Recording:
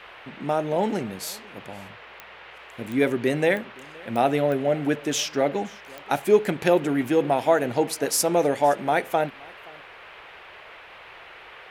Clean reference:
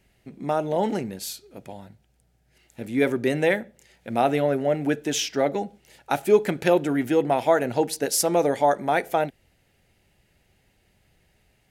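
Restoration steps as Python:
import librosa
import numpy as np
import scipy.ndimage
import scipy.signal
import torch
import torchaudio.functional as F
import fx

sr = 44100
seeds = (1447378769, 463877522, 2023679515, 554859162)

y = fx.fix_declick_ar(x, sr, threshold=10.0)
y = fx.noise_reduce(y, sr, print_start_s=10.76, print_end_s=11.26, reduce_db=20.0)
y = fx.fix_echo_inverse(y, sr, delay_ms=521, level_db=-24.0)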